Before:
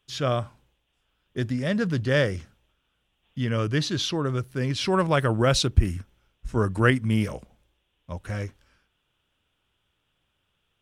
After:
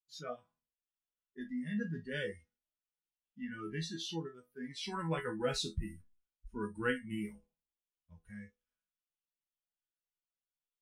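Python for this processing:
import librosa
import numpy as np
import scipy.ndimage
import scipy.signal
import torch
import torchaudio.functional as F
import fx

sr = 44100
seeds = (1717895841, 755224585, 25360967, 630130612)

y = fx.resonator_bank(x, sr, root=52, chord='major', decay_s=0.27)
y = fx.noise_reduce_blind(y, sr, reduce_db=20)
y = F.gain(torch.from_numpy(y), 2.0).numpy()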